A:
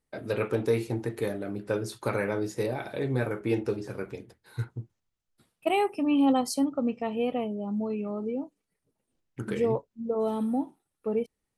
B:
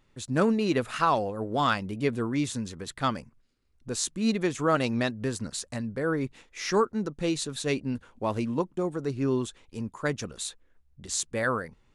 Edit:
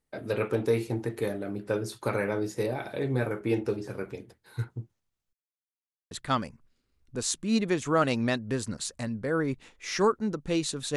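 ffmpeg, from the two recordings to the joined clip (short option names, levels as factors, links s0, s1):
-filter_complex "[0:a]apad=whole_dur=10.96,atrim=end=10.96,asplit=2[s0][s1];[s0]atrim=end=5.33,asetpts=PTS-STARTPTS,afade=t=out:st=5.326:d=0.004:c=hsin[s2];[s1]atrim=start=5.33:end=6.11,asetpts=PTS-STARTPTS,volume=0[s3];[1:a]atrim=start=2.84:end=7.69,asetpts=PTS-STARTPTS,afade=t=in:d=0.004:c=hsin[s4];[s2][s3][s4]concat=n=3:v=0:a=1"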